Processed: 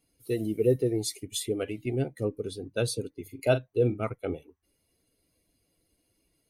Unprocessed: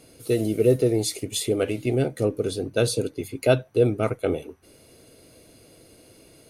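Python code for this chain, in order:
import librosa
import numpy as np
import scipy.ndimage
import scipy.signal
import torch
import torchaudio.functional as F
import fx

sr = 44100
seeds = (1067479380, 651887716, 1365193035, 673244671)

y = fx.bin_expand(x, sr, power=1.5)
y = fx.doubler(y, sr, ms=41.0, db=-10.5, at=(3.22, 4.03))
y = F.gain(torch.from_numpy(y), -3.5).numpy()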